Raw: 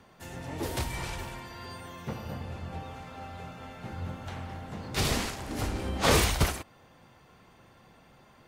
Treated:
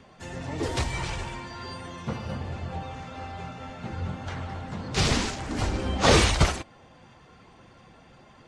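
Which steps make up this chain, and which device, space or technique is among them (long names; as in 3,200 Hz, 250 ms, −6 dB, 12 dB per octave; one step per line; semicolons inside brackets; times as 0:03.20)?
clip after many re-uploads (low-pass filter 8,100 Hz 24 dB per octave; spectral magnitudes quantised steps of 15 dB)
level +5 dB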